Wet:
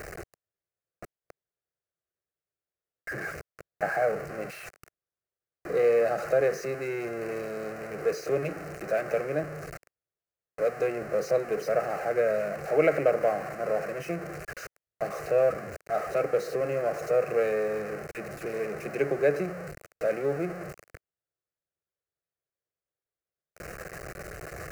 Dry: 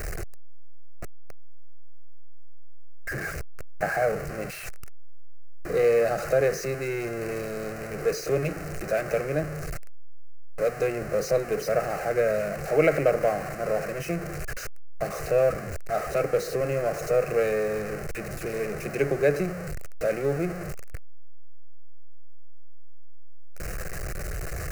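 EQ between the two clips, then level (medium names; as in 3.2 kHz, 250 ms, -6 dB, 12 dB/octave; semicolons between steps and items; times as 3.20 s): high-pass 290 Hz 6 dB/octave; treble shelf 2.9 kHz -9 dB; 0.0 dB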